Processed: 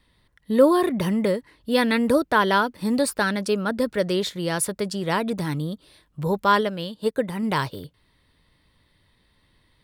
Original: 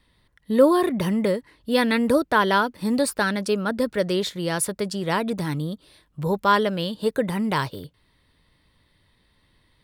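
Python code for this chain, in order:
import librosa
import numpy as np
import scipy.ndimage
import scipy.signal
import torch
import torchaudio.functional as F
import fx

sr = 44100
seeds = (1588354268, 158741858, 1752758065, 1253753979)

y = fx.upward_expand(x, sr, threshold_db=-37.0, expansion=1.5, at=(6.61, 7.43))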